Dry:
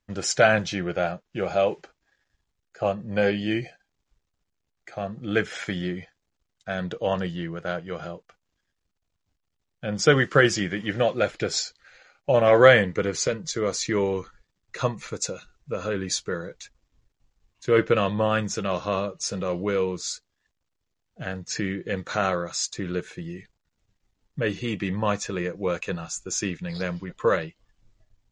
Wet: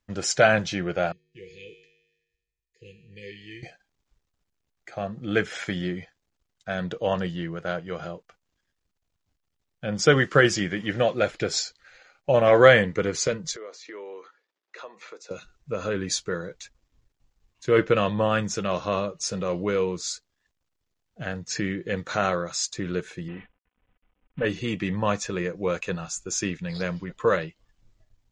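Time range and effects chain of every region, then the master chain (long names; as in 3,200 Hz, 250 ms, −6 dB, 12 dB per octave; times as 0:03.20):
0:01.12–0:03.63: linear-phase brick-wall band-stop 500–1,700 Hz + parametric band 240 Hz −13 dB 0.86 octaves + tuned comb filter 52 Hz, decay 1.1 s, harmonics odd, mix 80%
0:13.56–0:15.31: high-pass filter 360 Hz 24 dB per octave + downward compressor 4 to 1, threshold −38 dBFS + high-frequency loss of the air 130 metres
0:23.28–0:24.45: variable-slope delta modulation 16 kbit/s + comb filter 4 ms, depth 53%
whole clip: no processing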